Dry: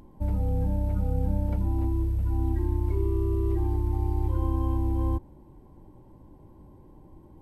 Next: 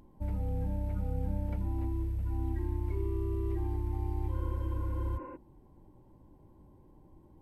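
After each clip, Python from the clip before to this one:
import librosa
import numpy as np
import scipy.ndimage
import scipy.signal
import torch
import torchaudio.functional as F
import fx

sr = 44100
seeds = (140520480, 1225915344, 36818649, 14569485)

y = fx.dynamic_eq(x, sr, hz=2100.0, q=1.4, threshold_db=-58.0, ratio=4.0, max_db=6)
y = fx.spec_repair(y, sr, seeds[0], start_s=4.4, length_s=0.94, low_hz=240.0, high_hz=2900.0, source='before')
y = y * 10.0 ** (-7.0 / 20.0)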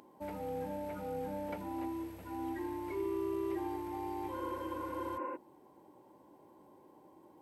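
y = scipy.signal.sosfilt(scipy.signal.butter(2, 410.0, 'highpass', fs=sr, output='sos'), x)
y = y * 10.0 ** (7.0 / 20.0)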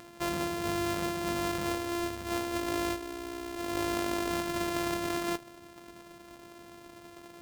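y = np.r_[np.sort(x[:len(x) // 128 * 128].reshape(-1, 128), axis=1).ravel(), x[len(x) // 128 * 128:]]
y = fx.over_compress(y, sr, threshold_db=-40.0, ratio=-0.5)
y = y * 10.0 ** (8.0 / 20.0)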